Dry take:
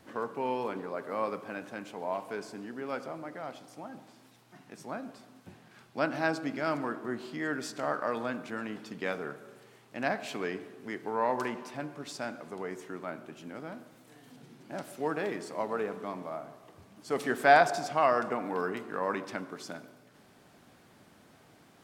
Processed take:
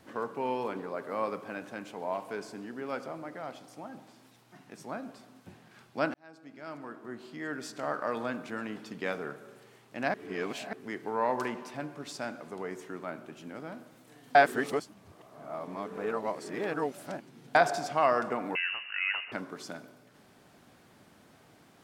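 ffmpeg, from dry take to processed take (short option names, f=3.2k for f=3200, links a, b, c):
-filter_complex "[0:a]asettb=1/sr,asplit=3[a][b][c];[a]atrim=end=18.554[d];[b]atrim=start=18.55:end=19.32,asetpts=PTS-STARTPTS,afade=t=in:d=0.004:c=qsin,afade=t=out:st=0.766:d=0.004:c=qsin,lowpass=f=2.6k:t=q:w=0.5098,lowpass=f=2.6k:t=q:w=0.6013,lowpass=f=2.6k:t=q:w=0.9,lowpass=f=2.6k:t=q:w=2.563,afreqshift=-3100[e];[c]atrim=start=19.316[f];[d][e]acrossfade=d=0.004:c1=hsin:c2=qsin[g];[g][f]acrossfade=d=0.004:c1=qsin:c2=hsin,asplit=6[h][i][j][k][l][m];[h]atrim=end=6.14,asetpts=PTS-STARTPTS,afade=t=out:st=6.136:d=0.004:c=hsin[n];[i]atrim=start=6.14:end=10.142,asetpts=PTS-STARTPTS,afade=t=in:d=2.1[o];[j]atrim=start=10.138:end=10.732,asetpts=PTS-STARTPTS,areverse[p];[k]atrim=start=10.728:end=14.352[q];[l]atrim=start=14.348:end=17.552,asetpts=PTS-STARTPTS,areverse[r];[m]atrim=start=17.548[s];[n][o]concat=n=2:v=0:a=1[t];[t][p]acrossfade=d=0.004:c1=hsin:c2=hsin[u];[u][q]acrossfade=d=0.004:c1=hsin:c2=hsin[v];[v][r]acrossfade=d=0.004:c1=hsin:c2=hsin[w];[w][s]acrossfade=d=0.004:c1=hsin:c2=hsin"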